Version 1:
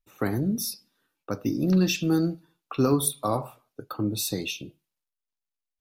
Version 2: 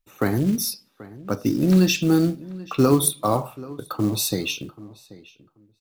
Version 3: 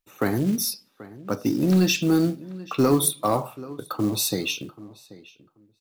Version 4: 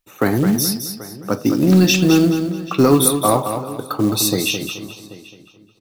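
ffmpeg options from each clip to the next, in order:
-filter_complex "[0:a]acrusher=bits=6:mode=log:mix=0:aa=0.000001,asplit=2[s0][s1];[s1]adelay=784,lowpass=f=2800:p=1,volume=0.112,asplit=2[s2][s3];[s3]adelay=784,lowpass=f=2800:p=1,volume=0.17[s4];[s0][s2][s4]amix=inputs=3:normalize=0,volume=1.78"
-af "lowshelf=f=81:g=-11,asoftclip=type=tanh:threshold=0.355"
-af "aecho=1:1:214|428|642|856:0.398|0.123|0.0383|0.0119,volume=2.11"

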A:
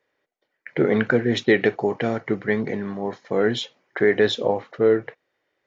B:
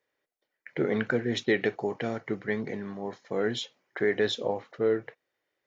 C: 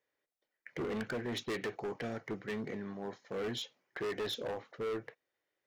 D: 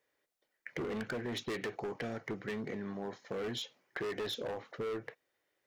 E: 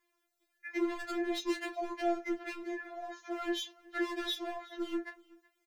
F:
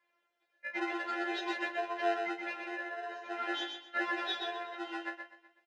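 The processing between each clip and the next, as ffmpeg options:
-af "highshelf=f=5400:g=8,volume=0.398"
-af "volume=26.6,asoftclip=hard,volume=0.0376,volume=0.562"
-af "acompressor=threshold=0.00891:ratio=6,volume=1.78"
-filter_complex "[0:a]asplit=2[s0][s1];[s1]adelay=26,volume=0.282[s2];[s0][s2]amix=inputs=2:normalize=0,aecho=1:1:374:0.0668,afftfilt=real='re*4*eq(mod(b,16),0)':imag='im*4*eq(mod(b,16),0)':win_size=2048:overlap=0.75,volume=1.88"
-filter_complex "[0:a]asplit=2[s0][s1];[s1]acrusher=samples=39:mix=1:aa=0.000001,volume=0.447[s2];[s0][s2]amix=inputs=2:normalize=0,highpass=720,lowpass=2800,aecho=1:1:125|250|375:0.562|0.146|0.038,volume=1.68"

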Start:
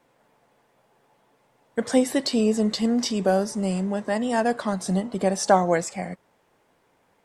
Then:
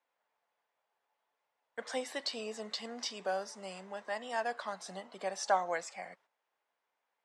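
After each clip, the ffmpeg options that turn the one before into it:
-filter_complex "[0:a]agate=range=0.355:threshold=0.00398:ratio=16:detection=peak,highpass=f=430:p=1,acrossover=split=570 6500:gain=0.224 1 0.2[s0][s1][s2];[s0][s1][s2]amix=inputs=3:normalize=0,volume=0.422"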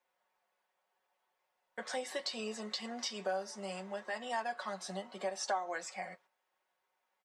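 -af "aecho=1:1:5.4:0.55,acompressor=threshold=0.0158:ratio=2.5,flanger=delay=7.5:depth=3.3:regen=-51:speed=0.73:shape=triangular,volume=1.78"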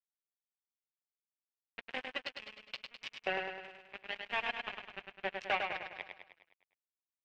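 -filter_complex "[0:a]acrusher=bits=4:mix=0:aa=0.5,lowpass=f=2600:t=q:w=3.8,asplit=2[s0][s1];[s1]aecho=0:1:103|206|309|412|515|618|721:0.562|0.298|0.158|0.0837|0.0444|0.0235|0.0125[s2];[s0][s2]amix=inputs=2:normalize=0,volume=0.794"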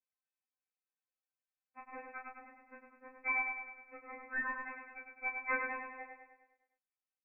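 -filter_complex "[0:a]asplit=2[s0][s1];[s1]adelay=26,volume=0.562[s2];[s0][s2]amix=inputs=2:normalize=0,lowpass=f=2300:t=q:w=0.5098,lowpass=f=2300:t=q:w=0.6013,lowpass=f=2300:t=q:w=0.9,lowpass=f=2300:t=q:w=2.563,afreqshift=-2700,afftfilt=real='re*3.46*eq(mod(b,12),0)':imag='im*3.46*eq(mod(b,12),0)':win_size=2048:overlap=0.75,volume=1.12"

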